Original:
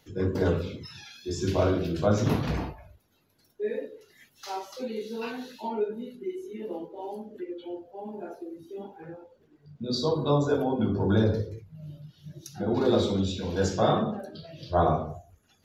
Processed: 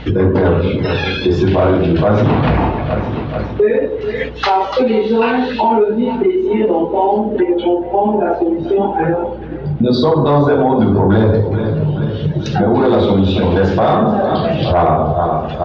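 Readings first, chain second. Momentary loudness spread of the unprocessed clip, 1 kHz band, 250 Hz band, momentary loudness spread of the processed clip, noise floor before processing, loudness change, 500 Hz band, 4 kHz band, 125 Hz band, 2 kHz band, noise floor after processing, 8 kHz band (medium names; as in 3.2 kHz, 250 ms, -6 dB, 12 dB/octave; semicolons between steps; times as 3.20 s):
19 LU, +17.5 dB, +15.5 dB, 6 LU, -66 dBFS, +14.5 dB, +15.5 dB, +12.0 dB, +14.5 dB, +17.5 dB, -23 dBFS, no reading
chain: low-pass 3.3 kHz 24 dB/octave; on a send: feedback delay 431 ms, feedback 49%, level -20 dB; on the sum: hum 60 Hz, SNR 34 dB; saturation -17.5 dBFS, distortion -17 dB; compression 3:1, threshold -46 dBFS, peak gain reduction 17.5 dB; dynamic bell 830 Hz, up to +5 dB, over -59 dBFS, Q 1.4; loudness maximiser +35.5 dB; trim -4 dB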